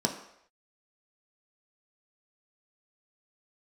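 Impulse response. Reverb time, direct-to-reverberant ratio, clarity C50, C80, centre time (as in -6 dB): not exponential, 1.5 dB, 9.0 dB, 11.0 dB, 20 ms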